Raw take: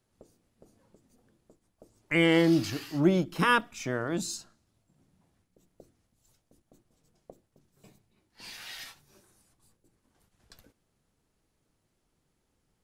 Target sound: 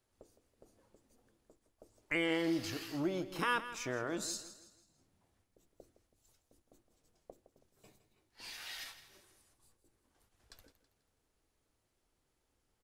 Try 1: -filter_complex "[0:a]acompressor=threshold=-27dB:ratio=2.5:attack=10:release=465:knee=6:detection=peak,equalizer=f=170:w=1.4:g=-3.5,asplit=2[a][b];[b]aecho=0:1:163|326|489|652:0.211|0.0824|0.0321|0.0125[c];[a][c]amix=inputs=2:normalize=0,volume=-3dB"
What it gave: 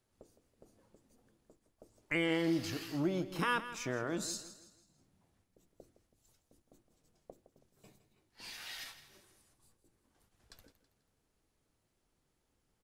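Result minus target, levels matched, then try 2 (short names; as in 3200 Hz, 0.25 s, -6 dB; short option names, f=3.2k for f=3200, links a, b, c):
125 Hz band +4.0 dB
-filter_complex "[0:a]acompressor=threshold=-27dB:ratio=2.5:attack=10:release=465:knee=6:detection=peak,equalizer=f=170:w=1.4:g=-9.5,asplit=2[a][b];[b]aecho=0:1:163|326|489|652:0.211|0.0824|0.0321|0.0125[c];[a][c]amix=inputs=2:normalize=0,volume=-3dB"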